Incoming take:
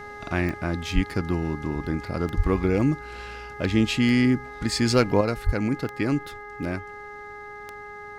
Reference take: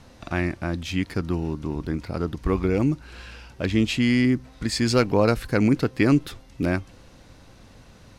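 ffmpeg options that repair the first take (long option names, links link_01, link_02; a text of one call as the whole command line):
ffmpeg -i in.wav -filter_complex "[0:a]adeclick=threshold=4,bandreject=frequency=413.9:width_type=h:width=4,bandreject=frequency=827.8:width_type=h:width=4,bandreject=frequency=1241.7:width_type=h:width=4,bandreject=frequency=1655.6:width_type=h:width=4,bandreject=frequency=2069.5:width_type=h:width=4,asplit=3[link_01][link_02][link_03];[link_01]afade=type=out:start_time=0.94:duration=0.02[link_04];[link_02]highpass=frequency=140:width=0.5412,highpass=frequency=140:width=1.3066,afade=type=in:start_time=0.94:duration=0.02,afade=type=out:start_time=1.06:duration=0.02[link_05];[link_03]afade=type=in:start_time=1.06:duration=0.02[link_06];[link_04][link_05][link_06]amix=inputs=3:normalize=0,asplit=3[link_07][link_08][link_09];[link_07]afade=type=out:start_time=2.36:duration=0.02[link_10];[link_08]highpass=frequency=140:width=0.5412,highpass=frequency=140:width=1.3066,afade=type=in:start_time=2.36:duration=0.02,afade=type=out:start_time=2.48:duration=0.02[link_11];[link_09]afade=type=in:start_time=2.48:duration=0.02[link_12];[link_10][link_11][link_12]amix=inputs=3:normalize=0,asplit=3[link_13][link_14][link_15];[link_13]afade=type=out:start_time=5.45:duration=0.02[link_16];[link_14]highpass=frequency=140:width=0.5412,highpass=frequency=140:width=1.3066,afade=type=in:start_time=5.45:duration=0.02,afade=type=out:start_time=5.57:duration=0.02[link_17];[link_15]afade=type=in:start_time=5.57:duration=0.02[link_18];[link_16][link_17][link_18]amix=inputs=3:normalize=0,asetnsamples=nb_out_samples=441:pad=0,asendcmd='5.21 volume volume 6dB',volume=0dB" out.wav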